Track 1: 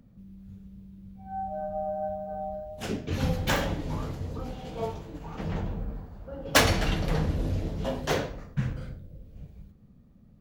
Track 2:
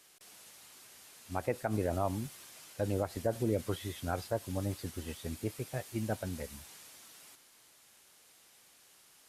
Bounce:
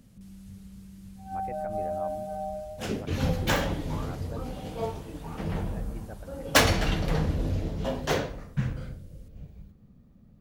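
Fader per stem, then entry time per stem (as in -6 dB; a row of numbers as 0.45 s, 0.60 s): +0.5 dB, -9.0 dB; 0.00 s, 0.00 s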